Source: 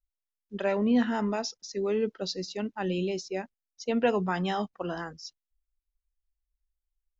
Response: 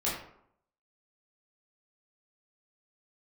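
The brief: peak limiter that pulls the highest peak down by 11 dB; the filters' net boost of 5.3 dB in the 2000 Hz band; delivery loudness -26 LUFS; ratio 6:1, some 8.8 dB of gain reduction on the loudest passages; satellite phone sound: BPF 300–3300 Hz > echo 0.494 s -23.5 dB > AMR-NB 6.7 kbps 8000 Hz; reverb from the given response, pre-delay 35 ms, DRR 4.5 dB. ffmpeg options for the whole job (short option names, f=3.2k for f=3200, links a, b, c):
-filter_complex "[0:a]equalizer=f=2k:t=o:g=7.5,acompressor=threshold=-28dB:ratio=6,alimiter=level_in=5dB:limit=-24dB:level=0:latency=1,volume=-5dB,asplit=2[a][b];[1:a]atrim=start_sample=2205,adelay=35[c];[b][c]afir=irnorm=-1:irlink=0,volume=-12dB[d];[a][d]amix=inputs=2:normalize=0,highpass=300,lowpass=3.3k,aecho=1:1:494:0.0668,volume=15dB" -ar 8000 -c:a libopencore_amrnb -b:a 6700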